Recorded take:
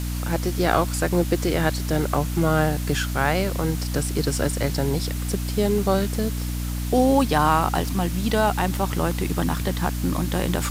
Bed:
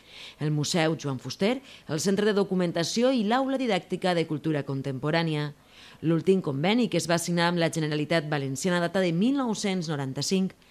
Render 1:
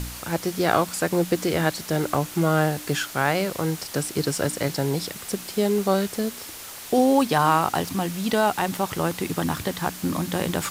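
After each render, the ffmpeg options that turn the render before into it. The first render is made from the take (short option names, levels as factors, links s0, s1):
-af "bandreject=f=60:t=h:w=4,bandreject=f=120:t=h:w=4,bandreject=f=180:t=h:w=4,bandreject=f=240:t=h:w=4,bandreject=f=300:t=h:w=4"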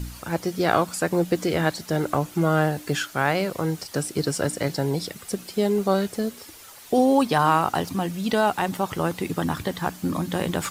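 -af "afftdn=nr=9:nf=-39"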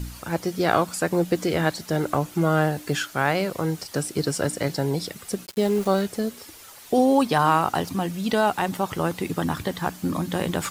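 -filter_complex "[0:a]asplit=3[s0][s1][s2];[s0]afade=t=out:st=5.45:d=0.02[s3];[s1]aeval=exprs='val(0)*gte(abs(val(0)),0.02)':c=same,afade=t=in:st=5.45:d=0.02,afade=t=out:st=6.01:d=0.02[s4];[s2]afade=t=in:st=6.01:d=0.02[s5];[s3][s4][s5]amix=inputs=3:normalize=0"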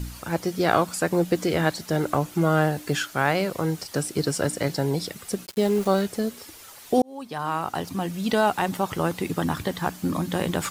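-filter_complex "[0:a]asplit=2[s0][s1];[s0]atrim=end=7.02,asetpts=PTS-STARTPTS,afade=t=out:st=7.016:d=0.004:c=hsin[s2];[s1]atrim=start=7.02,asetpts=PTS-STARTPTS,afade=t=in:d=1.25[s3];[s2][s3]concat=n=2:v=0:a=1"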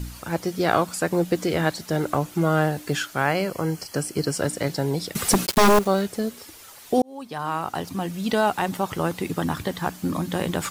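-filter_complex "[0:a]asettb=1/sr,asplit=3[s0][s1][s2];[s0]atrim=end=3.254[s3];[s1]atrim=start=3.25:end=4.37,asetpts=PTS-STARTPTS,afade=t=in:d=0.004:c=qsin,afade=t=out:st=1.116:d=0.004:c=qsin,asuperstop=centerf=3700:order=8:qfactor=6.5[s4];[s2]atrim=start=4.366[s5];[s3][s4]acrossfade=d=0.004:c1=hsin:c2=qsin[s6];[s6][s5]acrossfade=d=0.004:c1=qsin:c2=hsin,asettb=1/sr,asplit=3[s7][s8][s9];[s7]atrim=end=5.154[s10];[s8]atrim=start=5.15:end=5.79,asetpts=PTS-STARTPTS,afade=t=in:d=0.004:c=qsin,afade=t=out:st=0.636:d=0.004:c=qsin,aeval=exprs='0.282*sin(PI/2*3.55*val(0)/0.282)':c=same[s11];[s9]atrim=start=5.786[s12];[s10][s11]acrossfade=d=0.004:c1=hsin:c2=qsin[s13];[s13][s12]acrossfade=d=0.004:c1=qsin:c2=hsin"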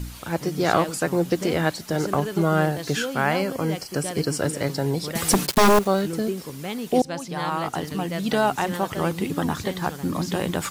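-filter_complex "[1:a]volume=0.422[s0];[0:a][s0]amix=inputs=2:normalize=0"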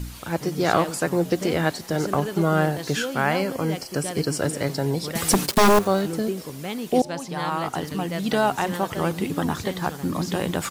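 -filter_complex "[0:a]asplit=5[s0][s1][s2][s3][s4];[s1]adelay=89,afreqshift=100,volume=0.0631[s5];[s2]adelay=178,afreqshift=200,volume=0.0347[s6];[s3]adelay=267,afreqshift=300,volume=0.0191[s7];[s4]adelay=356,afreqshift=400,volume=0.0105[s8];[s0][s5][s6][s7][s8]amix=inputs=5:normalize=0"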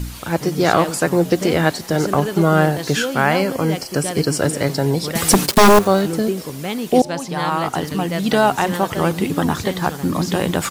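-af "volume=2,alimiter=limit=0.891:level=0:latency=1"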